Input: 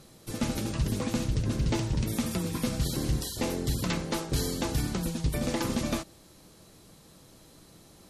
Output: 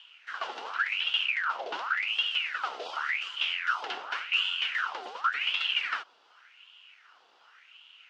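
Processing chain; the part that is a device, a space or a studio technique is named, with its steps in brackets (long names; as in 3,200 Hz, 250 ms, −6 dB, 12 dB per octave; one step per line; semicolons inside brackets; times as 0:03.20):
voice changer toy (ring modulator whose carrier an LFO sweeps 1,800 Hz, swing 70%, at 0.89 Hz; loudspeaker in its box 570–4,800 Hz, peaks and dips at 600 Hz −5 dB, 1,400 Hz +9 dB, 2,900 Hz +10 dB)
level −3.5 dB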